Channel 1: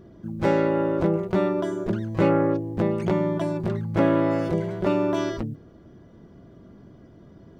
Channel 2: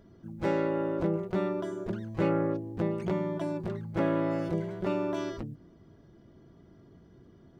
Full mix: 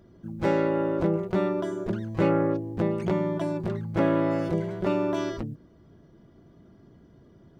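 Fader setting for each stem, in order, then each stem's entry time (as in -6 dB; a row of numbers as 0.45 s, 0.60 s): -10.0 dB, -0.5 dB; 0.00 s, 0.00 s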